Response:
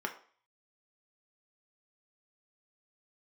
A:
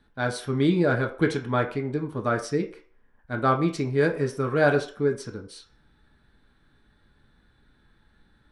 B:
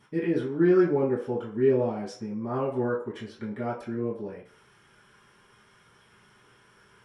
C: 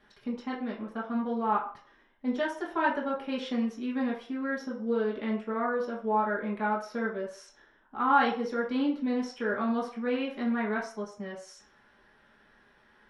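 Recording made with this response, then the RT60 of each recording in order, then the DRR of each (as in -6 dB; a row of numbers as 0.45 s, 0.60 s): A; 0.45 s, 0.45 s, 0.45 s; 2.5 dB, -10.0 dB, -5.5 dB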